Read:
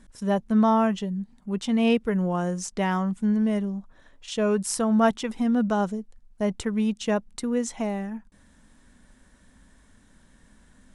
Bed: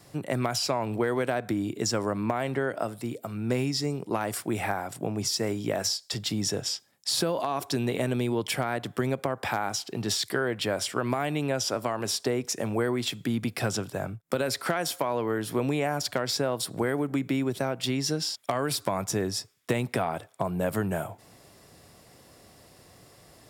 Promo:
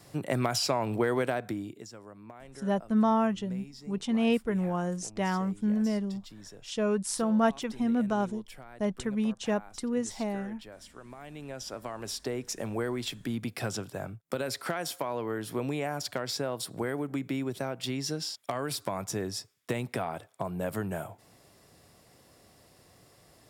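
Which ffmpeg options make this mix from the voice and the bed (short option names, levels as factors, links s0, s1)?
-filter_complex "[0:a]adelay=2400,volume=0.596[s0];[1:a]volume=5.31,afade=t=out:st=1.18:d=0.69:silence=0.105925,afade=t=in:st=11.11:d=1.46:silence=0.177828[s1];[s0][s1]amix=inputs=2:normalize=0"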